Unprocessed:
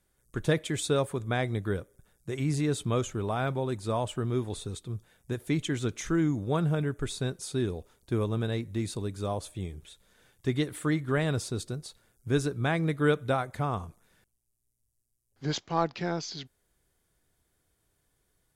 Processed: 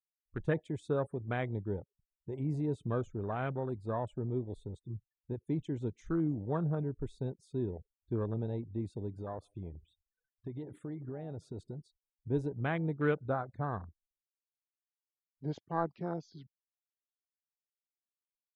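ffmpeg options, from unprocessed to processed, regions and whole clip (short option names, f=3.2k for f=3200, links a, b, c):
-filter_complex "[0:a]asettb=1/sr,asplit=3[a][b][c];[a]atrim=end=9.174[d];[b]atrim=start=9.17:end=11.83,asetpts=PTS-STARTPTS,afade=t=in:d=0.004:c=qsin,afade=t=out:st=2.656:d=0.004:c=qsin,acompressor=threshold=-32dB:ratio=8:attack=3.2:release=140:knee=1:detection=peak,equalizer=f=1.1k:w=0.38:g=4,asplit=2[e][f];[f]adelay=155,lowpass=f=3.9k:p=1,volume=-22dB,asplit=2[g][h];[h]adelay=155,lowpass=f=3.9k:p=1,volume=0.31[i];[e][g][i]amix=inputs=3:normalize=0,atrim=end_sample=117306[j];[c]atrim=start=11.826[k];[d][j]acrossfade=d=0.004:c1=hsin:c2=qsin[l];[l][k]acrossfade=d=0.004:c1=qsin:c2=hsin,afftfilt=real='re*gte(hypot(re,im),0.00501)':imag='im*gte(hypot(re,im),0.00501)':win_size=1024:overlap=0.75,afwtdn=0.02,highshelf=f=7.5k:g=-9.5,volume=-5.5dB"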